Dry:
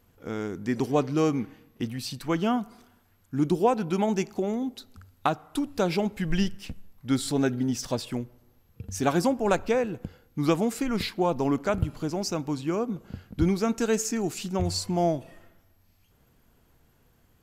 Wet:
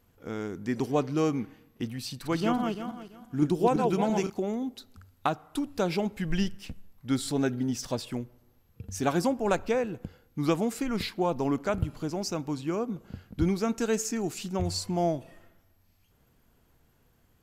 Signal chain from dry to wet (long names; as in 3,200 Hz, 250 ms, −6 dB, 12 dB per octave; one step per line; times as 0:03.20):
0:02.07–0:04.30: feedback delay that plays each chunk backwards 169 ms, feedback 45%, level −3.5 dB
level −2.5 dB